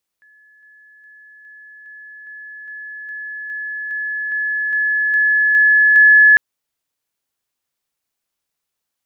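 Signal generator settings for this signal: level ladder 1710 Hz -47.5 dBFS, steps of 3 dB, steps 15, 0.41 s 0.00 s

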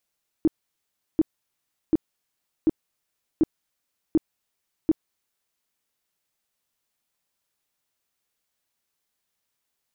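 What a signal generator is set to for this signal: tone bursts 318 Hz, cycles 8, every 0.74 s, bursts 7, -14 dBFS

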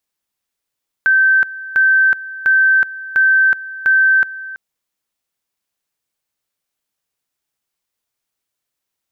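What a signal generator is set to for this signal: two-level tone 1550 Hz -8.5 dBFS, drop 17.5 dB, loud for 0.37 s, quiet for 0.33 s, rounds 5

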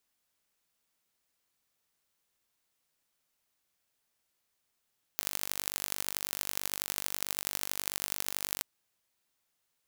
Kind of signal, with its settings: pulse train 49.1/s, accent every 4, -3.5 dBFS 3.43 s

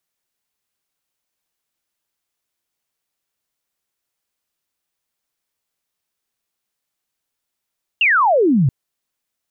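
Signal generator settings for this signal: laser zap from 2900 Hz, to 120 Hz, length 0.68 s sine, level -11 dB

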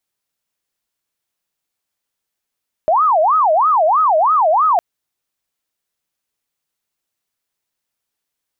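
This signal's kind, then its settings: siren wail 616–1280 Hz 3.1/s sine -10 dBFS 1.91 s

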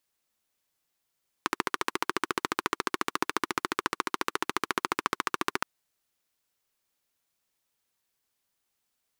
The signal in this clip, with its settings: single-cylinder engine model, steady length 4.17 s, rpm 1700, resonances 360/1100 Hz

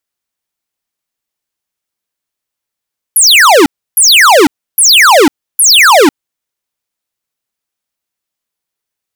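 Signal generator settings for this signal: burst of laser zaps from 12000 Hz, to 260 Hz, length 0.50 s square, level -4 dB, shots 4, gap 0.31 s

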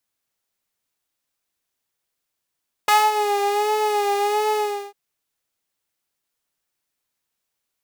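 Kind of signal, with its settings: synth patch with vibrato G#5, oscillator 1 triangle, oscillator 2 saw, interval 0 st, oscillator 2 level -7 dB, sub -4 dB, noise -17 dB, filter highpass, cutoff 230 Hz, Q 1.5, filter envelope 2.5 oct, filter decay 0.33 s, attack 5.8 ms, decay 0.22 s, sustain -11 dB, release 0.39 s, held 1.66 s, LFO 1.4 Hz, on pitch 50 cents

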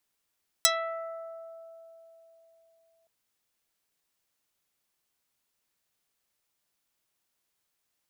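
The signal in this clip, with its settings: plucked string E5, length 2.42 s, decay 3.82 s, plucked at 0.28, dark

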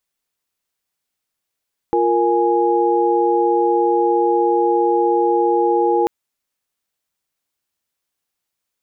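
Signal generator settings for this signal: chord F4/A#4/G#5 sine, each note -17.5 dBFS 4.14 s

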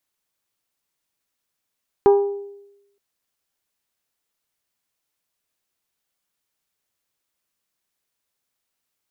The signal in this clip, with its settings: glass hit bell, length 0.92 s, lowest mode 402 Hz, decay 0.92 s, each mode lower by 8.5 dB, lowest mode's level -8 dB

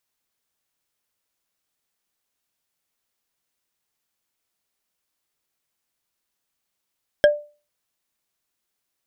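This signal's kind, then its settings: wood hit bar, lowest mode 591 Hz, decay 0.34 s, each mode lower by 6 dB, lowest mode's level -7 dB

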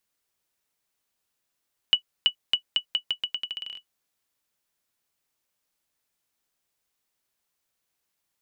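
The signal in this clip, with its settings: bouncing ball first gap 0.33 s, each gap 0.83, 2950 Hz, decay 90 ms -8 dBFS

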